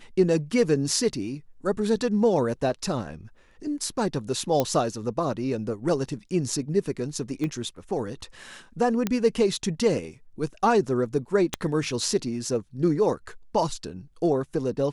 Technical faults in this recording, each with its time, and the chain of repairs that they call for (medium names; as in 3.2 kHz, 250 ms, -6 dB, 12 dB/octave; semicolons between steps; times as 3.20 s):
4.60 s: pop -9 dBFS
7.44 s: pop -18 dBFS
9.07 s: pop -11 dBFS
11.54 s: pop -11 dBFS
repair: de-click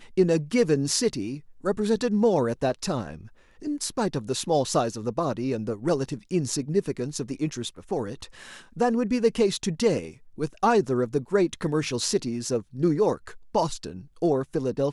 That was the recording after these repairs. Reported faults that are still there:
7.44 s: pop
11.54 s: pop